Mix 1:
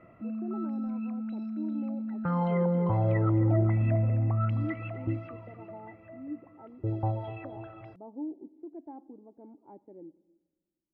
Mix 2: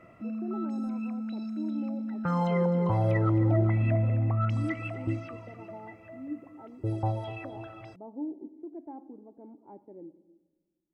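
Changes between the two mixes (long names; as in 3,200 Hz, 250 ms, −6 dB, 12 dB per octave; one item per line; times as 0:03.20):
speech: send +7.0 dB
background: remove high-frequency loss of the air 380 metres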